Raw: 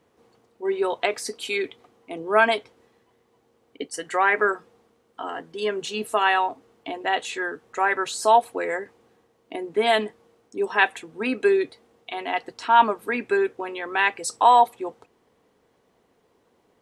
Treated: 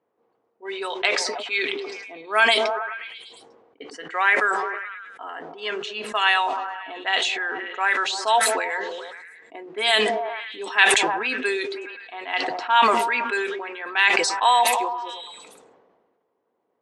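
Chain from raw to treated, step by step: low-pass opened by the level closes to 690 Hz, open at -17 dBFS; weighting filter ITU-R 468; on a send: delay with a stepping band-pass 0.106 s, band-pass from 260 Hz, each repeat 0.7 oct, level -9 dB; on the sum: sustainer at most 35 dB/s; gain -2 dB

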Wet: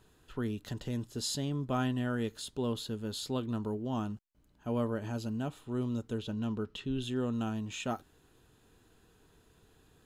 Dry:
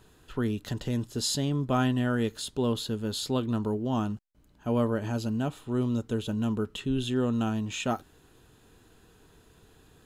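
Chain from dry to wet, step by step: 6.18–7.02 resonant high shelf 6500 Hz -6 dB, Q 1.5; gain -6 dB

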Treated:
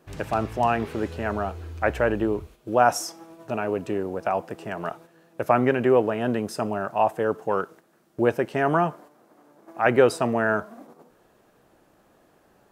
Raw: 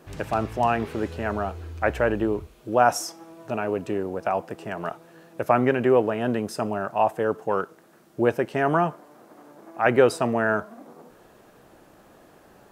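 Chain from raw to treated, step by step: gate -45 dBFS, range -7 dB

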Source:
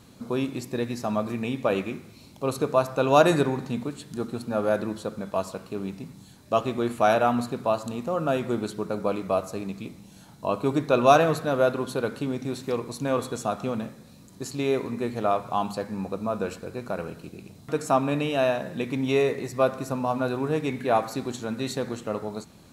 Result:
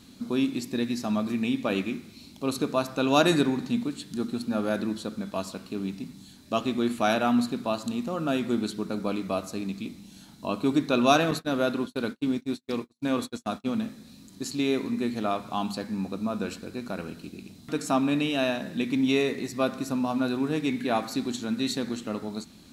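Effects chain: 11.31–13.72 gate -29 dBFS, range -48 dB; graphic EQ 125/250/500/1000/4000 Hz -7/+7/-7/-4/+5 dB

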